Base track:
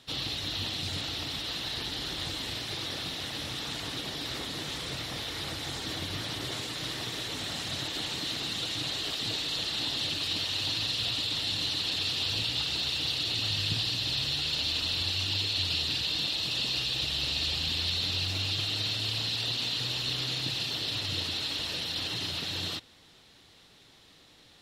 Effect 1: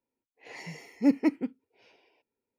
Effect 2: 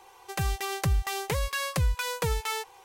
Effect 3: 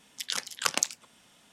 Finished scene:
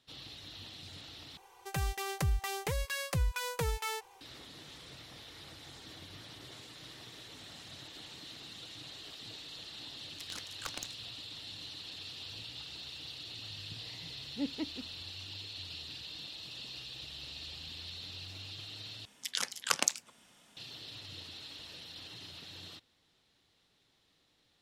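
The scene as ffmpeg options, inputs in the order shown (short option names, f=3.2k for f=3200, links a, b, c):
-filter_complex "[3:a]asplit=2[a][b];[0:a]volume=-15dB[c];[2:a]bandreject=f=1.1k:w=25[d];[a]aeval=exprs='(tanh(6.31*val(0)+0.4)-tanh(0.4))/6.31':c=same[e];[c]asplit=3[f][g][h];[f]atrim=end=1.374[i];[d]atrim=end=2.84,asetpts=PTS-STARTPTS,volume=-5.5dB[j];[g]atrim=start=4.206:end=19.054[k];[b]atrim=end=1.52,asetpts=PTS-STARTPTS,volume=-2.5dB[l];[h]atrim=start=20.566[m];[e]atrim=end=1.52,asetpts=PTS-STARTPTS,volume=-11dB,afade=t=in:d=0.004:c=hsin,afade=t=out:st=1.516:d=0.004:c=hsin,adelay=10000[n];[1:a]atrim=end=2.58,asetpts=PTS-STARTPTS,volume=-13.5dB,afade=t=in:d=0.004:c=hsin,afade=t=out:st=2.576:d=0.004:c=hsin,adelay=13350[o];[i][j]acrossfade=d=0.004:c1=hsin:c2=hsin[p];[p][k]acrossfade=d=0.004:c1=hsin:c2=hsin[q];[q][l]acrossfade=d=0.004:c1=hsin:c2=hsin[r];[r][m]acrossfade=d=0.004:c1=hsin:c2=hsin[s];[s][n][o]amix=inputs=3:normalize=0"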